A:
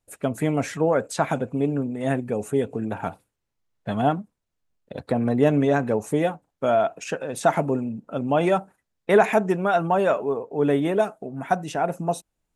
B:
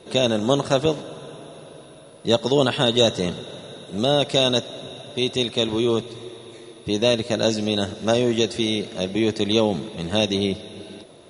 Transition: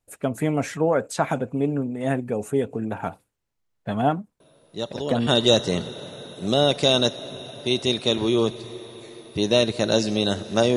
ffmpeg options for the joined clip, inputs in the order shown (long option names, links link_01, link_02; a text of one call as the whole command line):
ffmpeg -i cue0.wav -i cue1.wav -filter_complex "[1:a]asplit=2[link_01][link_02];[0:a]apad=whole_dur=10.76,atrim=end=10.76,atrim=end=5.272[link_03];[link_02]atrim=start=2.778:end=8.27[link_04];[link_01]atrim=start=1.91:end=2.78,asetpts=PTS-STARTPTS,volume=-11dB,afade=type=in:duration=0.004:curve=hsin,afade=type=out:start_time=0.866:duration=0.004:curve=hsin,adelay=4400[link_05];[link_03][link_04]acrossfade=duration=0.004:curve1=hsin:curve2=hsin[link_06];[link_06][link_05]amix=inputs=2:normalize=0" out.wav